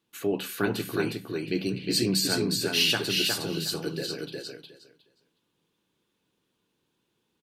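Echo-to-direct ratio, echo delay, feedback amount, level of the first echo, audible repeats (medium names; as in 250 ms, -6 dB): -3.5 dB, 361 ms, 17%, -3.5 dB, 3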